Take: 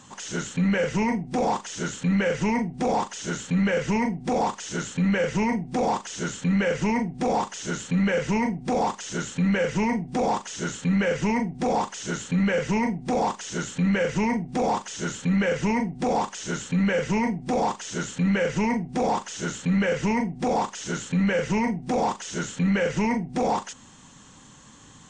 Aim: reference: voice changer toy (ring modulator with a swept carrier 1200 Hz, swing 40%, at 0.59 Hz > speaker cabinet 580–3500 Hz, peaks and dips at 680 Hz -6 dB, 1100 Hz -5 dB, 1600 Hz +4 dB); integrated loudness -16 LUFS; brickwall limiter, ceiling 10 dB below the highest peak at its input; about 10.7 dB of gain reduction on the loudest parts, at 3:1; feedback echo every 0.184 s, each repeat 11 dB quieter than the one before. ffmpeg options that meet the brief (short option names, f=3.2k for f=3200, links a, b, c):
-af "acompressor=threshold=-35dB:ratio=3,alimiter=level_in=10dB:limit=-24dB:level=0:latency=1,volume=-10dB,aecho=1:1:184|368|552:0.282|0.0789|0.0221,aeval=exprs='val(0)*sin(2*PI*1200*n/s+1200*0.4/0.59*sin(2*PI*0.59*n/s))':c=same,highpass=580,equalizer=f=680:t=q:w=4:g=-6,equalizer=f=1.1k:t=q:w=4:g=-5,equalizer=f=1.6k:t=q:w=4:g=4,lowpass=f=3.5k:w=0.5412,lowpass=f=3.5k:w=1.3066,volume=27.5dB"